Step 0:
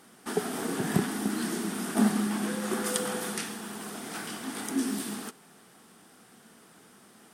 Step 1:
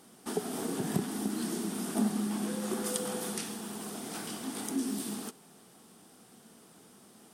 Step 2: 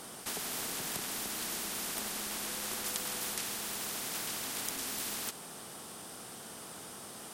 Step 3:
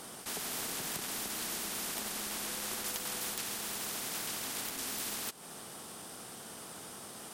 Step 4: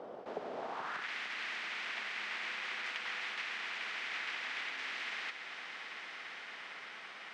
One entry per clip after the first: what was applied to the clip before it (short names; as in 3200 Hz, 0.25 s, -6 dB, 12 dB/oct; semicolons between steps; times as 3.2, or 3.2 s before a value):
bell 1700 Hz -7.5 dB 1.3 oct; compressor 1.5:1, threshold -34 dBFS, peak gain reduction 5.5 dB
spectral compressor 4:1; gain +2 dB
transient shaper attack -3 dB, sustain -8 dB; wrapped overs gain 24 dB
air absorption 170 m; swelling echo 0.113 s, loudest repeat 8, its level -17 dB; band-pass sweep 550 Hz -> 2100 Hz, 0.55–1.1; gain +10.5 dB